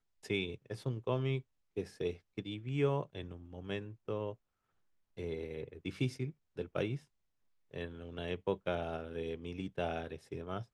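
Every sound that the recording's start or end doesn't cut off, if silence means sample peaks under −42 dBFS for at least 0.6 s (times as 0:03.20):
0:05.18–0:06.97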